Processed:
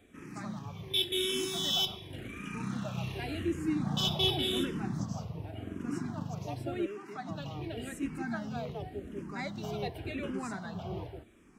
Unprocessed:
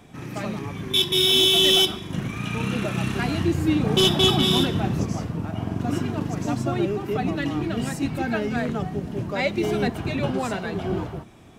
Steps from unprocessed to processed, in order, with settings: 6.86–7.29 weighting filter A; endless phaser -0.89 Hz; gain -8.5 dB

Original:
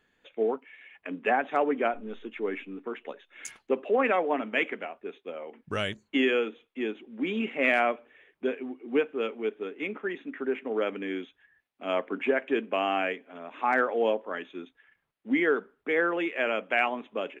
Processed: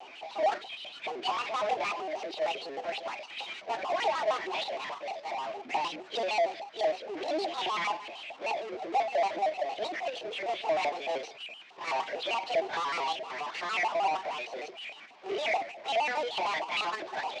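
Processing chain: pitch shift by moving bins +8 st; bell 3700 Hz +5 dB 0.48 oct; level quantiser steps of 17 dB; LFO band-pass saw up 4.7 Hz 660–2300 Hz; power-law curve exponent 0.35; speaker cabinet 140–6300 Hz, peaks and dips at 240 Hz +5 dB, 360 Hz +6 dB, 720 Hz +8 dB, 1400 Hz -5 dB, 2500 Hz +7 dB; shaped vibrato square 6.5 Hz, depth 160 cents

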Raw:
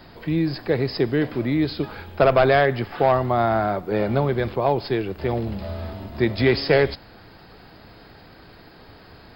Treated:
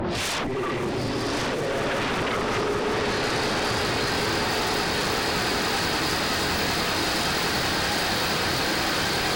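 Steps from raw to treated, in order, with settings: HPF 64 Hz 12 dB/oct; notch 640 Hz, Q 19; treble ducked by the level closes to 1200 Hz, closed at -19 dBFS; tilt +1.5 dB/oct; notches 60/120/180/240/300/360/420/480/540 Hz; compressor 6:1, threshold -28 dBFS, peak gain reduction 13 dB; auto swell 0.347 s; one-sided clip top -36.5 dBFS; Paulstretch 4.3×, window 0.05 s, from 6.34; sine folder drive 20 dB, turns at -25.5 dBFS; swelling echo 0.19 s, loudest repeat 8, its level -12.5 dB; gain +1.5 dB

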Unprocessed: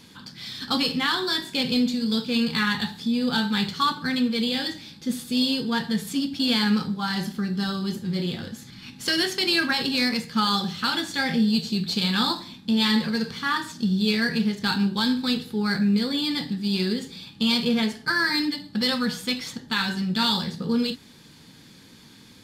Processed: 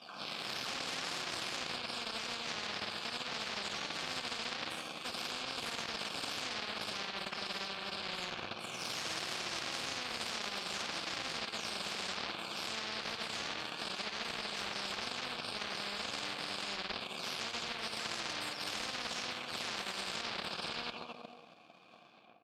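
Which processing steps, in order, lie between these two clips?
spectral delay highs early, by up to 0.411 s; limiter -21.5 dBFS, peak gain reduction 10.5 dB; on a send: reverse bouncing-ball echo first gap 50 ms, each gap 1.4×, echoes 5; on the sum: power-law curve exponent 2; in parallel at 0 dB: compressor, threshold -39 dBFS, peak gain reduction 15.5 dB; on the sum: vowel filter a; high shelf 7300 Hz -9 dB; spectral compressor 10:1; gain +6.5 dB

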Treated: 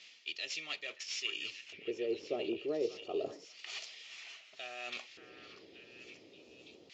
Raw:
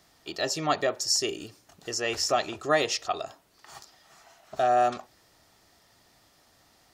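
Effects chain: CVSD 64 kbps; band shelf 1100 Hz -12 dB; reverse; compressor 6:1, threshold -44 dBFS, peak gain reduction 19 dB; reverse; LFO band-pass square 0.29 Hz 410–2500 Hz; on a send: delay with a stepping band-pass 0.58 s, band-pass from 1400 Hz, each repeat 0.7 oct, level -7 dB; on the sum: gain +15.5 dB; Vorbis 48 kbps 16000 Hz

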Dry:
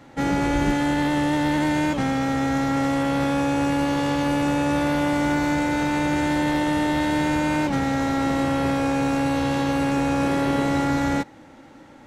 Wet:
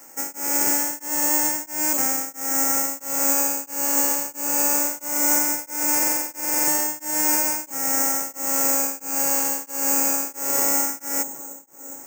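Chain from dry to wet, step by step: Bessel high-pass 490 Hz, order 2; band shelf 4300 Hz -11.5 dB 1 oct; dark delay 0.343 s, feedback 75%, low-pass 830 Hz, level -14.5 dB; careless resampling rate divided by 6×, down filtered, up zero stuff; stuck buffer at 5.98, samples 2048, times 14; beating tremolo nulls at 1.5 Hz; gain -1 dB

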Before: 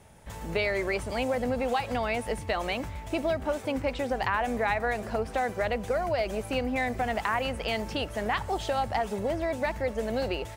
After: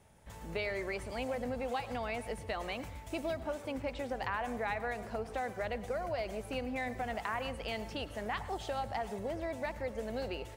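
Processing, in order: 2.83–3.4 high shelf 4900 Hz +6 dB; on a send: reverb RT60 0.45 s, pre-delay 93 ms, DRR 14.5 dB; on the sum: gain -8.5 dB

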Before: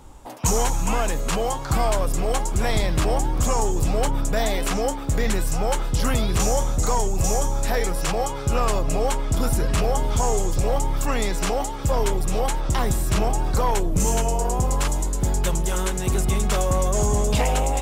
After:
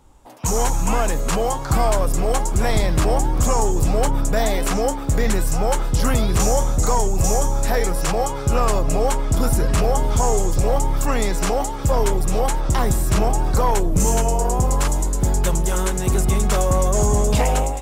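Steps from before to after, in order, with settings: AGC gain up to 14 dB; dynamic EQ 3100 Hz, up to -4 dB, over -33 dBFS, Q 1.1; gain -7.5 dB

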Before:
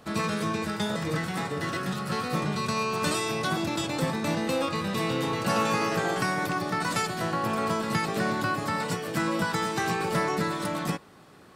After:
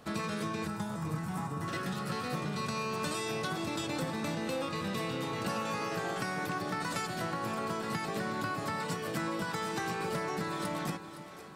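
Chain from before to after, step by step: compressor, threshold -29 dBFS, peak gain reduction 8 dB; 0.67–1.68 graphic EQ 125/500/1000/2000/4000 Hz +4/-10/+6/-9/-12 dB; split-band echo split 350 Hz, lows 0.314 s, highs 0.514 s, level -13 dB; gain -2.5 dB

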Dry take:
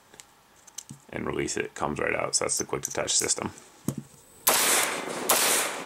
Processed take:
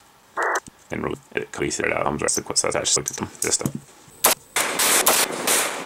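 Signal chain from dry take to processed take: slices in reverse order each 0.228 s, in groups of 2; added harmonics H 4 -32 dB, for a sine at -6 dBFS; painted sound noise, 0.37–0.59, 330–2000 Hz -27 dBFS; gain +5 dB

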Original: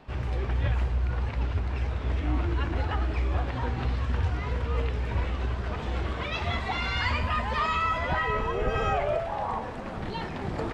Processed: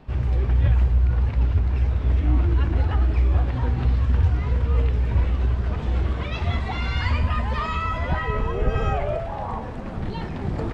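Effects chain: low shelf 290 Hz +10.5 dB; gain -1.5 dB

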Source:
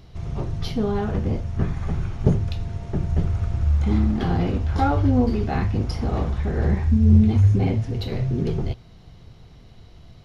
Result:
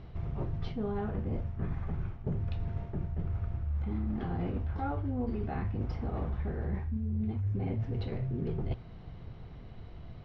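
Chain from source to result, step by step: LPF 2300 Hz 12 dB/oct; reverse; compressor 10:1, threshold -30 dBFS, peak gain reduction 20.5 dB; reverse

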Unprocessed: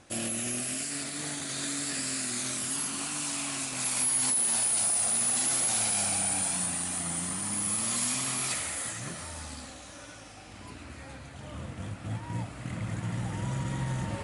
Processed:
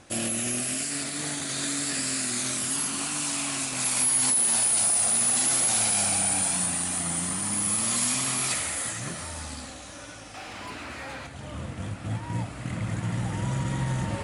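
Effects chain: 10.34–11.27 overdrive pedal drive 16 dB, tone 3500 Hz, clips at -32 dBFS; gain +4 dB

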